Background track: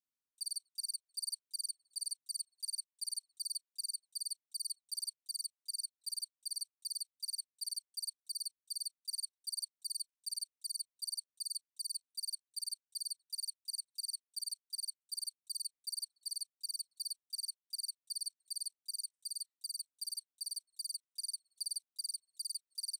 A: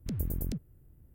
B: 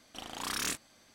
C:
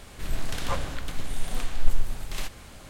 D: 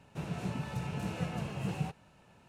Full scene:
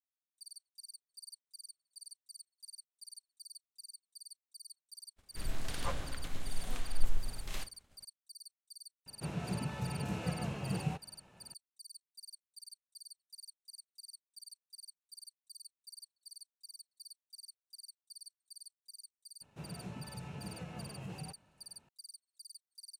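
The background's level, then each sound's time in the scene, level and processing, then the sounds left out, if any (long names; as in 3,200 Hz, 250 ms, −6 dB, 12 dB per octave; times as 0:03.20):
background track −11.5 dB
0:05.16: mix in C −8 dB + downward expander −35 dBFS
0:09.06: mix in D −1 dB
0:19.41: mix in D −8 dB + brickwall limiter −27 dBFS
not used: A, B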